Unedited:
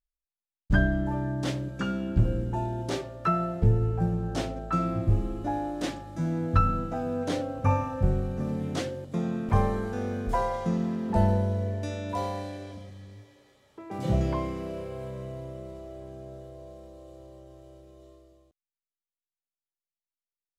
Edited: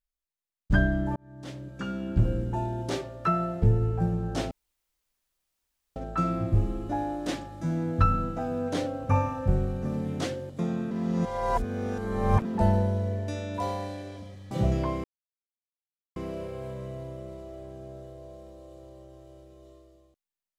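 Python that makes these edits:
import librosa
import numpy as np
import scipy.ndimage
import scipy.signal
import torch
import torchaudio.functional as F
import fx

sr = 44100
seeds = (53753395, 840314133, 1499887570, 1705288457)

y = fx.edit(x, sr, fx.fade_in_span(start_s=1.16, length_s=1.08),
    fx.insert_room_tone(at_s=4.51, length_s=1.45),
    fx.reverse_span(start_s=9.46, length_s=1.54),
    fx.cut(start_s=13.06, length_s=0.94),
    fx.insert_silence(at_s=14.53, length_s=1.12), tone=tone)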